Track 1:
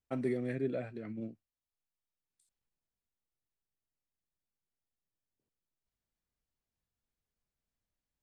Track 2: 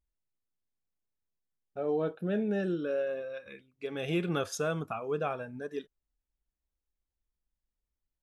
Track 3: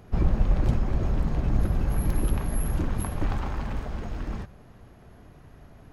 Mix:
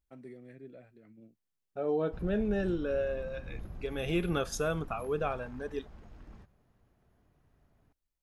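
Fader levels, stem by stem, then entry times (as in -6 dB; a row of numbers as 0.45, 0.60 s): -15.0, 0.0, -19.0 dB; 0.00, 0.00, 2.00 s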